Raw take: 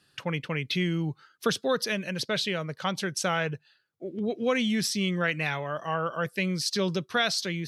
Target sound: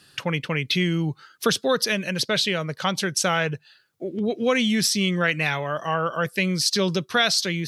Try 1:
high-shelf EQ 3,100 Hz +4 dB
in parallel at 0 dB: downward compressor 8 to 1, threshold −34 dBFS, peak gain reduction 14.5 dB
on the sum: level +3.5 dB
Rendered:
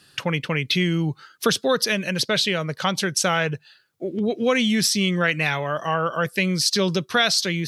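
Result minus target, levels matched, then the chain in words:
downward compressor: peak gain reduction −7.5 dB
high-shelf EQ 3,100 Hz +4 dB
in parallel at 0 dB: downward compressor 8 to 1, threshold −42.5 dBFS, peak gain reduction 22 dB
on the sum: level +3.5 dB

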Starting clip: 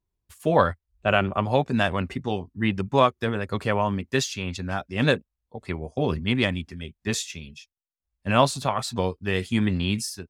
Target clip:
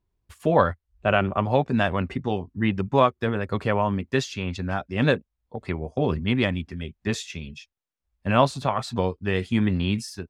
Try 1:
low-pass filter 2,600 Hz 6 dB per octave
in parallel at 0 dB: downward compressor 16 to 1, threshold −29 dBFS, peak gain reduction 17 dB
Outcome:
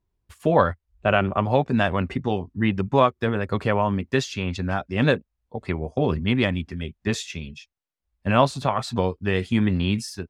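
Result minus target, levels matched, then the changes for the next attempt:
downward compressor: peak gain reduction −7.5 dB
change: downward compressor 16 to 1, threshold −37 dBFS, peak gain reduction 24.5 dB

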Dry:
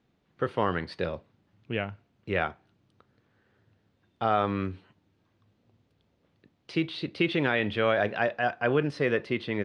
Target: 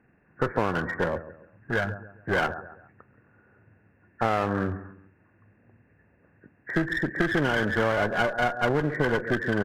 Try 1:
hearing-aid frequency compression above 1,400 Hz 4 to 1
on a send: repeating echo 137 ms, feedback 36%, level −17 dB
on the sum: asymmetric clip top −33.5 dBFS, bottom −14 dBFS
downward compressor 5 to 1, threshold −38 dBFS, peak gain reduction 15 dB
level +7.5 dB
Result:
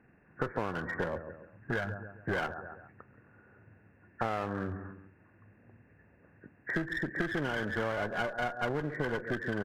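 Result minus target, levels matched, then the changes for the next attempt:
downward compressor: peak gain reduction +9 dB
change: downward compressor 5 to 1, threshold −27 dBFS, peak gain reduction 6 dB

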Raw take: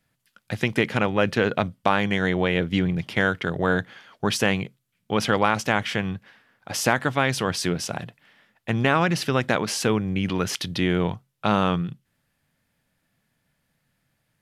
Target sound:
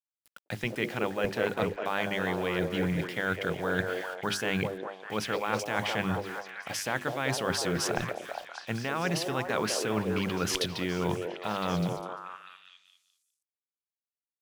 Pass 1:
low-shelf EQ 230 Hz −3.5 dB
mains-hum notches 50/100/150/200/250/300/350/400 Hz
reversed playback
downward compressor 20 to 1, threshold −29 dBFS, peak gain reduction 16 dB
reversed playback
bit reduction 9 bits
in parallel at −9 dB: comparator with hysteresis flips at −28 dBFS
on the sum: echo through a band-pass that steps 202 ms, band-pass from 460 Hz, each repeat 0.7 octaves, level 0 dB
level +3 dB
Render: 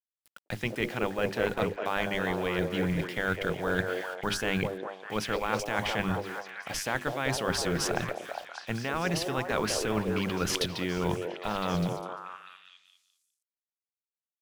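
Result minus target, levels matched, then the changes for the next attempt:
comparator with hysteresis: distortion −21 dB
change: comparator with hysteresis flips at −21.5 dBFS

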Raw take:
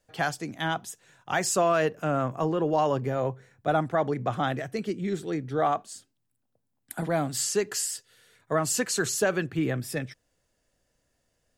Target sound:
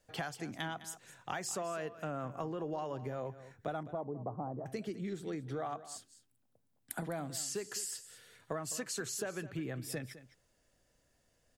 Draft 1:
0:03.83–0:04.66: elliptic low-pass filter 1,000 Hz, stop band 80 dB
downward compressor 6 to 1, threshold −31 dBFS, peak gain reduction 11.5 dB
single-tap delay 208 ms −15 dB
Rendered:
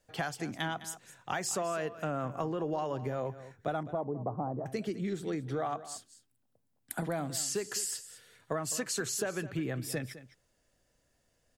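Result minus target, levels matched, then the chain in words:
downward compressor: peak gain reduction −5 dB
0:03.83–0:04.66: elliptic low-pass filter 1,000 Hz, stop band 80 dB
downward compressor 6 to 1, threshold −37 dBFS, peak gain reduction 16.5 dB
single-tap delay 208 ms −15 dB

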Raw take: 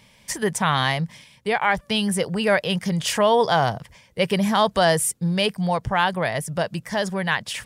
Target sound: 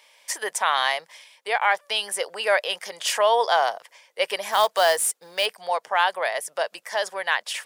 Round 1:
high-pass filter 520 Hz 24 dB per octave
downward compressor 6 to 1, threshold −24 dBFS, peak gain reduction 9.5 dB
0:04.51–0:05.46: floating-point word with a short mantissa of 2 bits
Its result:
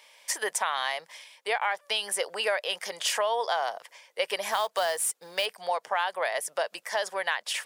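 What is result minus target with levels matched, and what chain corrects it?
downward compressor: peak gain reduction +9.5 dB
high-pass filter 520 Hz 24 dB per octave
0:04.51–0:05.46: floating-point word with a short mantissa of 2 bits

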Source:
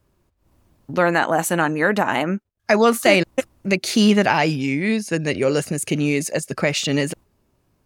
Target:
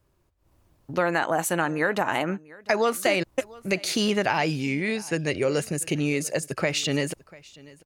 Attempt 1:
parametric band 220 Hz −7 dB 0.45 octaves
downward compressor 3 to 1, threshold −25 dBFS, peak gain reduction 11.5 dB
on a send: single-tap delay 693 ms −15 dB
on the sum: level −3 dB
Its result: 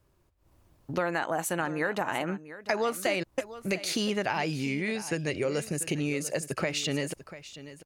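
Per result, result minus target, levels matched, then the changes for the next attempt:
downward compressor: peak gain reduction +5.5 dB; echo-to-direct +7.5 dB
change: downward compressor 3 to 1, threshold −16.5 dBFS, peak gain reduction 6 dB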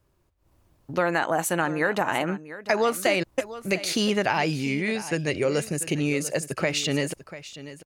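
echo-to-direct +7.5 dB
change: single-tap delay 693 ms −22.5 dB

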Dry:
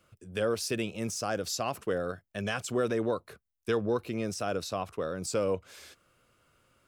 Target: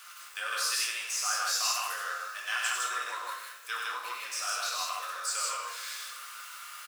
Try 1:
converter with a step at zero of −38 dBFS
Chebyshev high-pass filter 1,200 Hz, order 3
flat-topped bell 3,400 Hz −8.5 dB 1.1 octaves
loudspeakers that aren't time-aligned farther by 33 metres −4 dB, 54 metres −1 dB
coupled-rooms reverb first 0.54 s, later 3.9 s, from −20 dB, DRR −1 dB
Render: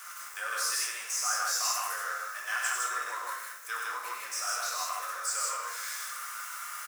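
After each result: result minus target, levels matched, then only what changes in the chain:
converter with a step at zero: distortion +5 dB; 4,000 Hz band −3.0 dB
change: converter with a step at zero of −44 dBFS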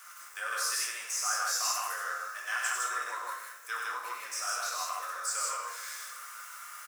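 4,000 Hz band −3.5 dB
remove: flat-topped bell 3,400 Hz −8.5 dB 1.1 octaves

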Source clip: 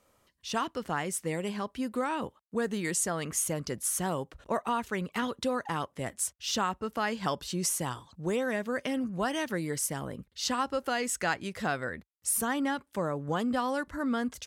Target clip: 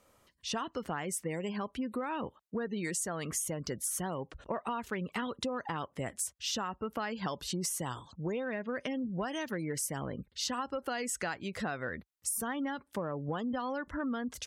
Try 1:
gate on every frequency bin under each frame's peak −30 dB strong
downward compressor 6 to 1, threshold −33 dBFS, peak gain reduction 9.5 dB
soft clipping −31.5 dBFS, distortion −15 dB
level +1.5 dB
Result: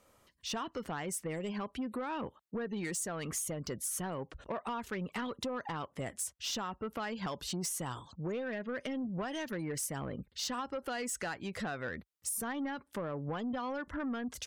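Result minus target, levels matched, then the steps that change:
soft clipping: distortion +16 dB
change: soft clipping −21 dBFS, distortion −32 dB

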